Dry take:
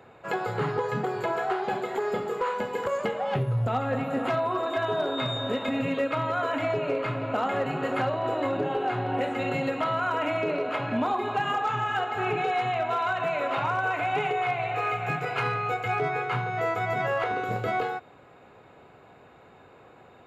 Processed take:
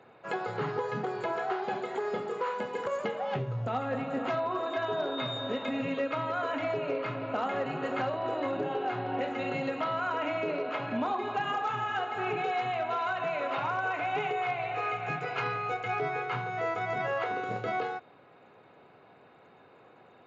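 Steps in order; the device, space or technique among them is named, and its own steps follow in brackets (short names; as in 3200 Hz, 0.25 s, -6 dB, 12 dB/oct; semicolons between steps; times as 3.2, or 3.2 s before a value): Bluetooth headset (HPF 130 Hz; downsampling 16000 Hz; gain -4 dB; SBC 64 kbps 16000 Hz)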